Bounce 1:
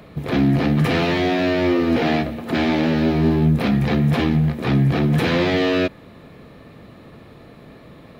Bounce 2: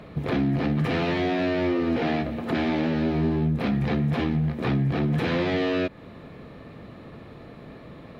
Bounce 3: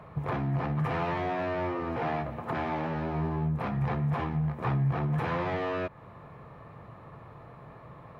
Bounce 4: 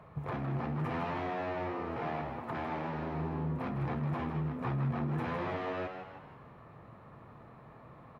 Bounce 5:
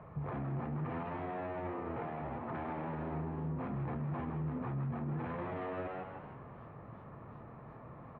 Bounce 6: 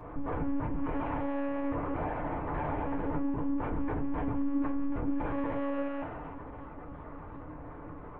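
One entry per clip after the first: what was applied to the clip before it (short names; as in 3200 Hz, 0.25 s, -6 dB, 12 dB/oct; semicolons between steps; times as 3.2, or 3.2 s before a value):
LPF 3800 Hz 6 dB/oct; compressor 2.5:1, threshold -24 dBFS, peak gain reduction 8 dB
graphic EQ 125/250/1000/4000 Hz +8/-8/+12/-8 dB; gain -7.5 dB
frequency-shifting echo 0.158 s, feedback 45%, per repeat +99 Hz, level -7.5 dB; gain -6 dB
limiter -34 dBFS, peak gain reduction 10.5 dB; air absorption 490 m; warbling echo 0.382 s, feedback 64%, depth 213 cents, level -21 dB; gain +3.5 dB
monotone LPC vocoder at 8 kHz 280 Hz; pre-echo 0.236 s -18 dB; FDN reverb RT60 0.31 s, low-frequency decay 0.95×, high-frequency decay 0.45×, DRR 2 dB; gain +4 dB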